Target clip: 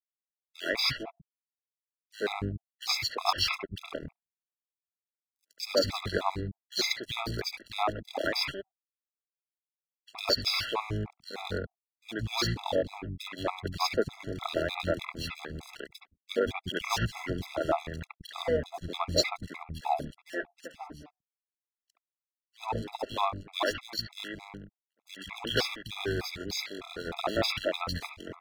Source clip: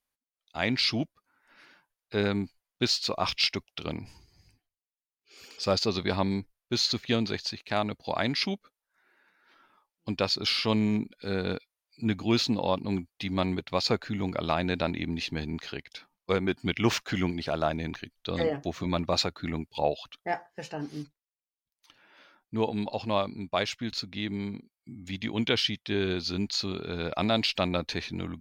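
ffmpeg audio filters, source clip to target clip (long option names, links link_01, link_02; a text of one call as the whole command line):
ffmpeg -i in.wav -filter_complex "[0:a]equalizer=frequency=220:width=1.8:gain=-12,aeval=exprs='sgn(val(0))*max(abs(val(0))-0.00794,0)':channel_layout=same,asplit=2[link_01][link_02];[link_02]asetrate=22050,aresample=44100,atempo=2,volume=-8dB[link_03];[link_01][link_03]amix=inputs=2:normalize=0,acrossover=split=230|2700[link_04][link_05][link_06];[link_05]adelay=70[link_07];[link_04]adelay=170[link_08];[link_08][link_07][link_06]amix=inputs=3:normalize=0,afftfilt=real='re*gt(sin(2*PI*3.3*pts/sr)*(1-2*mod(floor(b*sr/1024/670),2)),0)':imag='im*gt(sin(2*PI*3.3*pts/sr)*(1-2*mod(floor(b*sr/1024/670),2)),0)':win_size=1024:overlap=0.75,volume=4dB" out.wav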